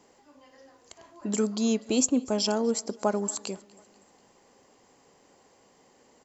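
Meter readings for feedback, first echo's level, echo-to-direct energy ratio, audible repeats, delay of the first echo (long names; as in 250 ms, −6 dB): 52%, −24.0 dB, −22.5 dB, 2, 244 ms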